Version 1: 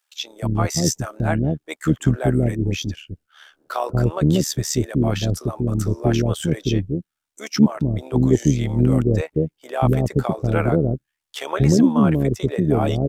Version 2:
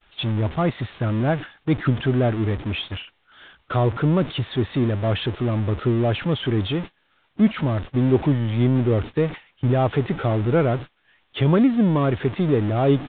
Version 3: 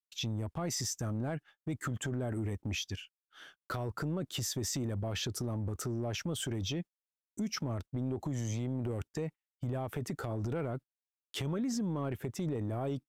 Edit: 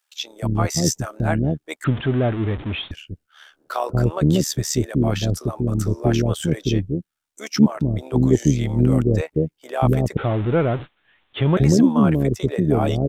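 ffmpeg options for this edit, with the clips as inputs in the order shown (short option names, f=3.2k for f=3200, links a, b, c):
-filter_complex "[1:a]asplit=2[a][b];[0:a]asplit=3[c][d][e];[c]atrim=end=1.842[f];[a]atrim=start=1.838:end=2.912[g];[d]atrim=start=2.908:end=10.172[h];[b]atrim=start=10.168:end=11.572[i];[e]atrim=start=11.568[j];[f][g]acrossfade=d=0.004:c1=hsin:c2=hsin[k];[k][h]acrossfade=d=0.004:c1=hsin:c2=hsin[l];[l][i]acrossfade=d=0.004:c1=hsin:c2=hsin[m];[m][j]acrossfade=d=0.004:c1=hsin:c2=hsin"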